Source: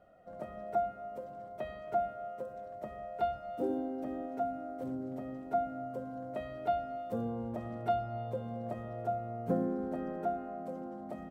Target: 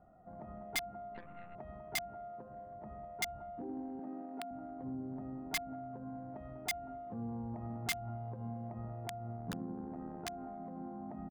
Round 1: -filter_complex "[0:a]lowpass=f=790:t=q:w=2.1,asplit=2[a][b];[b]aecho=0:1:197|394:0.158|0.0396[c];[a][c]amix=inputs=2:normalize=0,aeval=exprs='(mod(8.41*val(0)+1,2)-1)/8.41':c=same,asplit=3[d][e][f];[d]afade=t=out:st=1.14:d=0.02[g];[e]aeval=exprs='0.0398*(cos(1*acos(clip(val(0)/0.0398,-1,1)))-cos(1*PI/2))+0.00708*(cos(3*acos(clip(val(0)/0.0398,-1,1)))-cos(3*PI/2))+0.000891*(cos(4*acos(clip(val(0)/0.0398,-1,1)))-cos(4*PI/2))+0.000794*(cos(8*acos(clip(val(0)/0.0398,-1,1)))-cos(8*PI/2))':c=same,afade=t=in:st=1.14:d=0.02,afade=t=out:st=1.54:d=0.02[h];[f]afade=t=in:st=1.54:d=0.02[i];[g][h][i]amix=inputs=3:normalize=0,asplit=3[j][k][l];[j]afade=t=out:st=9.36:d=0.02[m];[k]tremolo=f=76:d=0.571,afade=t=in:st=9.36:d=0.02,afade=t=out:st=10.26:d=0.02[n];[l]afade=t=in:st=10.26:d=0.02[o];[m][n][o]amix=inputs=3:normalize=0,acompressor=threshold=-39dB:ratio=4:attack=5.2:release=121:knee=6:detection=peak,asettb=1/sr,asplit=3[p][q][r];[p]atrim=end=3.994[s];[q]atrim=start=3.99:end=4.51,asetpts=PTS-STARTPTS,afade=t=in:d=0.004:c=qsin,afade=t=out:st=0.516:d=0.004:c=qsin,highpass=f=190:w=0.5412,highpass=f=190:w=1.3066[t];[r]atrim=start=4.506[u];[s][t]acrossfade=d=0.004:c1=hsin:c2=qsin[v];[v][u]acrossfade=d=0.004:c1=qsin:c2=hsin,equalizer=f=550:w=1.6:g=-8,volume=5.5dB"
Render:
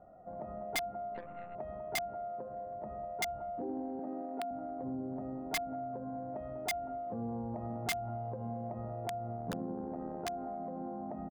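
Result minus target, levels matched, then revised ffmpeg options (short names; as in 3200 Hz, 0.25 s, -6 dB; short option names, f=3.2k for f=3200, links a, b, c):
500 Hz band +4.0 dB
-filter_complex "[0:a]lowpass=f=790:t=q:w=2.1,asplit=2[a][b];[b]aecho=0:1:197|394:0.158|0.0396[c];[a][c]amix=inputs=2:normalize=0,aeval=exprs='(mod(8.41*val(0)+1,2)-1)/8.41':c=same,asplit=3[d][e][f];[d]afade=t=out:st=1.14:d=0.02[g];[e]aeval=exprs='0.0398*(cos(1*acos(clip(val(0)/0.0398,-1,1)))-cos(1*PI/2))+0.00708*(cos(3*acos(clip(val(0)/0.0398,-1,1)))-cos(3*PI/2))+0.000891*(cos(4*acos(clip(val(0)/0.0398,-1,1)))-cos(4*PI/2))+0.000794*(cos(8*acos(clip(val(0)/0.0398,-1,1)))-cos(8*PI/2))':c=same,afade=t=in:st=1.14:d=0.02,afade=t=out:st=1.54:d=0.02[h];[f]afade=t=in:st=1.54:d=0.02[i];[g][h][i]amix=inputs=3:normalize=0,asplit=3[j][k][l];[j]afade=t=out:st=9.36:d=0.02[m];[k]tremolo=f=76:d=0.571,afade=t=in:st=9.36:d=0.02,afade=t=out:st=10.26:d=0.02[n];[l]afade=t=in:st=10.26:d=0.02[o];[m][n][o]amix=inputs=3:normalize=0,acompressor=threshold=-39dB:ratio=4:attack=5.2:release=121:knee=6:detection=peak,asettb=1/sr,asplit=3[p][q][r];[p]atrim=end=3.994[s];[q]atrim=start=3.99:end=4.51,asetpts=PTS-STARTPTS,afade=t=in:d=0.004:c=qsin,afade=t=out:st=0.516:d=0.004:c=qsin,highpass=f=190:w=0.5412,highpass=f=190:w=1.3066[t];[r]atrim=start=4.506[u];[s][t]acrossfade=d=0.004:c1=hsin:c2=qsin[v];[v][u]acrossfade=d=0.004:c1=qsin:c2=hsin,equalizer=f=550:w=1.6:g=-19.5,volume=5.5dB"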